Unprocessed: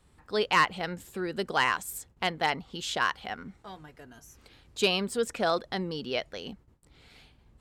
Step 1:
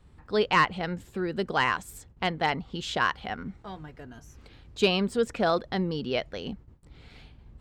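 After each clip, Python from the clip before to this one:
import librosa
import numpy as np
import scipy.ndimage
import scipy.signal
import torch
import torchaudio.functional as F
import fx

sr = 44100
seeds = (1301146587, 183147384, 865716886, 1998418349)

y = fx.low_shelf(x, sr, hz=240.0, db=7.5)
y = fx.rider(y, sr, range_db=3, speed_s=2.0)
y = fx.peak_eq(y, sr, hz=12000.0, db=-11.0, octaves=1.4)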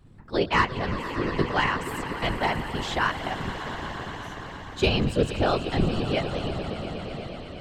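y = fx.octave_divider(x, sr, octaves=1, level_db=3.0)
y = fx.echo_swell(y, sr, ms=117, loudest=5, wet_db=-14.5)
y = fx.whisperise(y, sr, seeds[0])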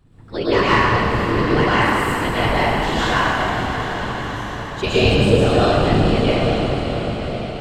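y = fx.rev_plate(x, sr, seeds[1], rt60_s=2.2, hf_ratio=0.75, predelay_ms=95, drr_db=-9.5)
y = F.gain(torch.from_numpy(y), -1.0).numpy()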